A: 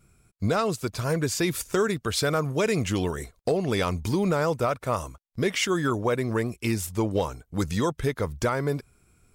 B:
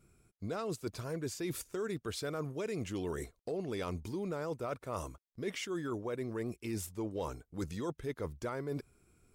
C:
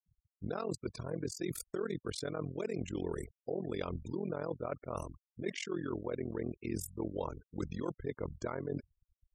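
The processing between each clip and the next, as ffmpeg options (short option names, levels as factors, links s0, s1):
-af "equalizer=f=350:t=o:w=1.1:g=6,areverse,acompressor=threshold=0.0398:ratio=6,areverse,volume=0.447"
-af "tremolo=f=43:d=0.947,afftfilt=real='re*gte(hypot(re,im),0.00316)':imag='im*gte(hypot(re,im),0.00316)':win_size=1024:overlap=0.75,adynamicequalizer=threshold=0.00141:dfrequency=1600:dqfactor=0.83:tfrequency=1600:tqfactor=0.83:attack=5:release=100:ratio=0.375:range=2:mode=cutabove:tftype=bell,volume=1.58"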